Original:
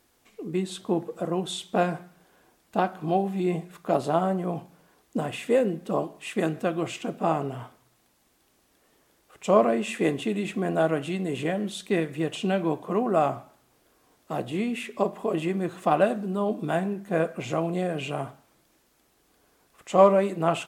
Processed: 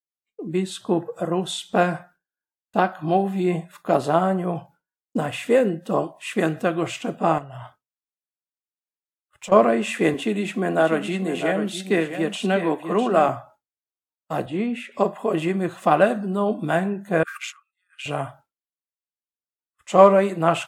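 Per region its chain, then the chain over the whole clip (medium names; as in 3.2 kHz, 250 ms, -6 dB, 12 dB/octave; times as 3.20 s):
7.38–9.52 s: waveshaping leveller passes 1 + compression 5:1, threshold -36 dBFS
10.14–13.29 s: steep high-pass 170 Hz + delay 652 ms -8.5 dB
14.46–14.92 s: high-pass 150 Hz + treble shelf 3 kHz -10.5 dB
17.23–18.06 s: treble shelf 3.7 kHz +2.5 dB + compressor with a negative ratio -39 dBFS + brick-wall FIR high-pass 1.1 kHz
whole clip: spectral noise reduction 17 dB; expander -48 dBFS; dynamic bell 1.6 kHz, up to +4 dB, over -41 dBFS, Q 1.5; trim +4 dB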